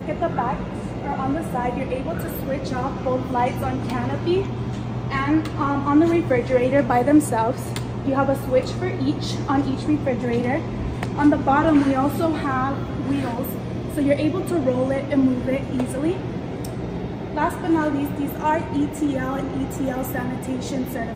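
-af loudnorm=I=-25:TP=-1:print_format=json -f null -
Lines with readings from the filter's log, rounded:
"input_i" : "-22.8",
"input_tp" : "-5.2",
"input_lra" : "4.7",
"input_thresh" : "-32.8",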